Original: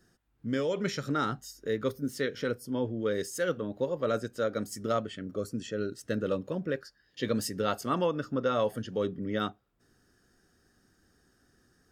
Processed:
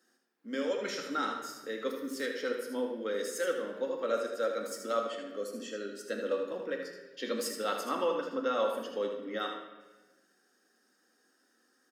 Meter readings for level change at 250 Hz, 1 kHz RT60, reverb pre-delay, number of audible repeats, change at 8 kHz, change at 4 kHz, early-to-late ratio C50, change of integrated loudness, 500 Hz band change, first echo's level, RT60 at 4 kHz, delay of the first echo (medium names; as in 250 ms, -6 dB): -6.5 dB, 1.1 s, 4 ms, 1, -1.0 dB, -0.5 dB, 3.5 dB, -2.5 dB, -1.5 dB, -7.0 dB, 0.95 s, 78 ms